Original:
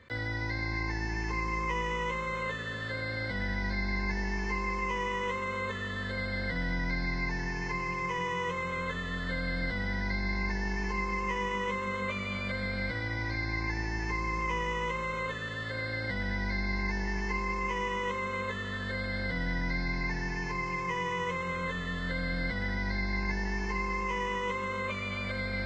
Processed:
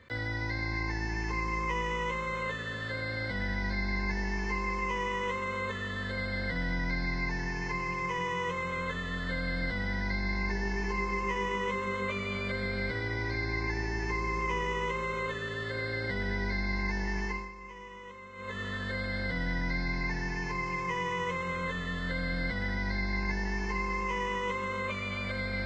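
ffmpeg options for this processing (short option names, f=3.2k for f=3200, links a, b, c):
-filter_complex "[0:a]asettb=1/sr,asplit=3[a][b][c];[a]atrim=end=10.514[d];[b]atrim=start=10.51:end=16.53,asetpts=PTS-STARTPTS,afade=t=in:d=0.004:c=qsin,afade=t=out:st=6.016:d=0.004:c=qsin,aeval=exprs='val(0)+0.01*sin(2*PI*400*n/s)':c=same[e];[c]atrim=start=16.526[f];[d][e]acrossfade=d=0.004:c1=hsin:c2=qsin[g];[g][f]acrossfade=d=0.004:c1=qsin:c2=hsin,asplit=3[h][i][j];[h]atrim=end=17.51,asetpts=PTS-STARTPTS,afade=t=out:st=17.24:d=0.27:silence=0.199526[k];[i]atrim=start=17.51:end=18.35,asetpts=PTS-STARTPTS,volume=-14dB[l];[j]atrim=start=18.35,asetpts=PTS-STARTPTS,afade=t=in:d=0.27:silence=0.199526[m];[k][l][m]concat=n=3:v=0:a=1"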